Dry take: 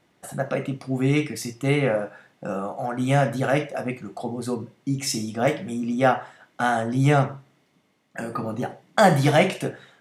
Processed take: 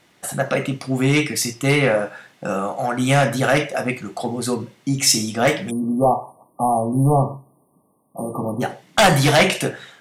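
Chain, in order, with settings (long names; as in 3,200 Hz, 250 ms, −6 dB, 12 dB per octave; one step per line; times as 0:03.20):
sine wavefolder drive 7 dB, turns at −4 dBFS
time-frequency box erased 0:05.71–0:08.61, 1,200–8,600 Hz
tilt shelving filter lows −4 dB, about 1,400 Hz
level −2.5 dB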